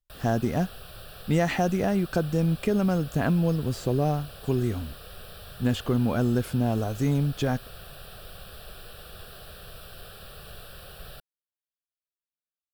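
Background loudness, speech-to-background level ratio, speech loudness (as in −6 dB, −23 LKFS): −44.0 LKFS, 17.5 dB, −26.5 LKFS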